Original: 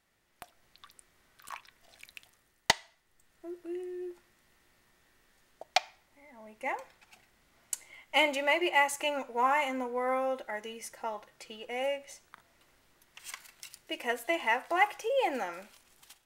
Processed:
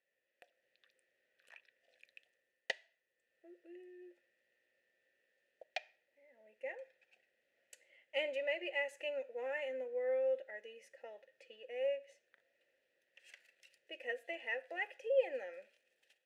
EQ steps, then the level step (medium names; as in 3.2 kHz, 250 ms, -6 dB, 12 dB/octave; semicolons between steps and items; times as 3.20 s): vowel filter e; treble shelf 5.2 kHz +8 dB; -1.0 dB